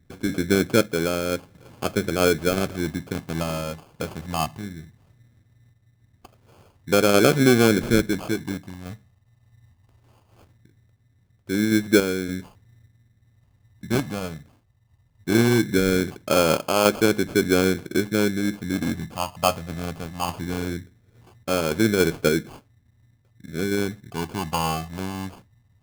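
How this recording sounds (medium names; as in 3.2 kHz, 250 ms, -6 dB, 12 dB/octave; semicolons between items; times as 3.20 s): random-step tremolo; phasing stages 12, 0.19 Hz, lowest notch 360–2200 Hz; aliases and images of a low sample rate 1.9 kHz, jitter 0%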